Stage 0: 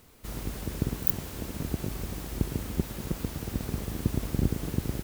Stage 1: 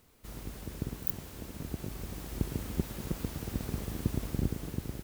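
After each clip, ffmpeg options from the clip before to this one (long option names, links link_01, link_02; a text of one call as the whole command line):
ffmpeg -i in.wav -af "dynaudnorm=framelen=390:gausssize=5:maxgain=4dB,volume=-7dB" out.wav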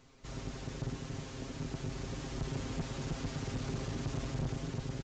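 ffmpeg -i in.wav -af "aecho=1:1:7.5:0.8,aresample=16000,asoftclip=type=tanh:threshold=-32dB,aresample=44100,volume=1.5dB" out.wav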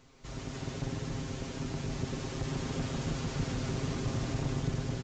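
ffmpeg -i in.wav -af "aecho=1:1:151.6|285.7:0.631|0.631,volume=1.5dB" out.wav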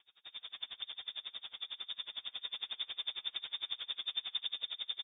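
ffmpeg -i in.wav -af "lowpass=frequency=3100:width_type=q:width=0.5098,lowpass=frequency=3100:width_type=q:width=0.6013,lowpass=frequency=3100:width_type=q:width=0.9,lowpass=frequency=3100:width_type=q:width=2.563,afreqshift=-3700,aeval=exprs='val(0)*pow(10,-29*(0.5-0.5*cos(2*PI*11*n/s))/20)':channel_layout=same,volume=-1.5dB" out.wav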